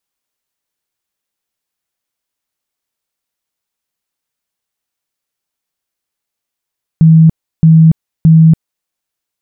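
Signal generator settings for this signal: tone bursts 161 Hz, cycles 46, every 0.62 s, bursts 3, -1.5 dBFS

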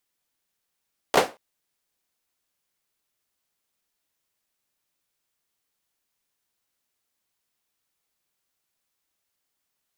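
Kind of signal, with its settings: hand clap length 0.23 s, bursts 3, apart 16 ms, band 540 Hz, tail 0.25 s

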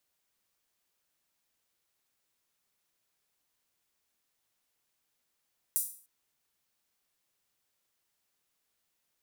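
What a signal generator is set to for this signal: open hi-hat length 0.30 s, high-pass 9.3 kHz, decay 0.44 s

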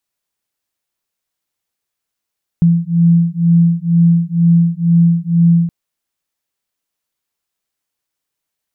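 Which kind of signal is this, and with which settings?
beating tones 168 Hz, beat 2.1 Hz, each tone -11.5 dBFS 3.07 s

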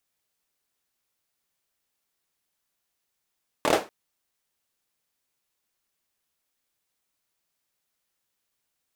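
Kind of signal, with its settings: hand clap length 0.24 s, apart 26 ms, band 530 Hz, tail 0.26 s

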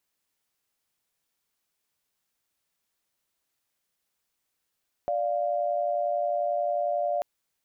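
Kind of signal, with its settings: chord D5/F5 sine, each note -27 dBFS 2.14 s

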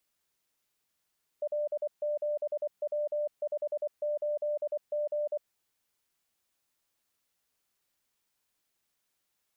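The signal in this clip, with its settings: Morse "L7W58G" 24 wpm 594 Hz -28 dBFS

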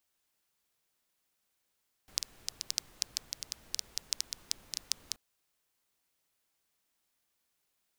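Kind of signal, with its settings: rain from filtered ticks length 3.08 s, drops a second 7.1, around 5.2 kHz, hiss -18 dB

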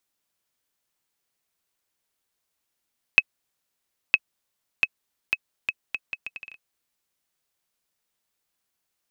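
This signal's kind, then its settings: bouncing ball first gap 0.96 s, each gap 0.72, 2.57 kHz, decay 43 ms -1.5 dBFS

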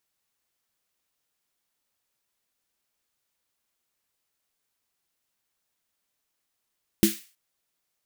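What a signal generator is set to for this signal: snare drum length 0.32 s, tones 210 Hz, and 330 Hz, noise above 1.8 kHz, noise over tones -8 dB, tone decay 0.18 s, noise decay 0.39 s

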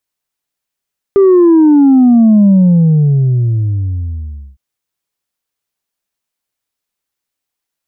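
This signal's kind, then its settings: sub drop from 400 Hz, over 3.41 s, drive 1.5 dB, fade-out 2.09 s, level -4 dB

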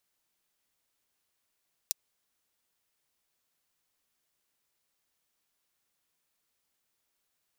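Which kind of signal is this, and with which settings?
closed hi-hat, high-pass 4.9 kHz, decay 0.02 s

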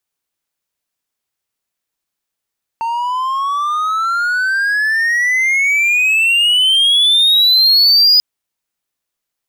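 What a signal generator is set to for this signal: gliding synth tone triangle, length 5.39 s, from 906 Hz, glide +29.5 st, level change +10 dB, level -4 dB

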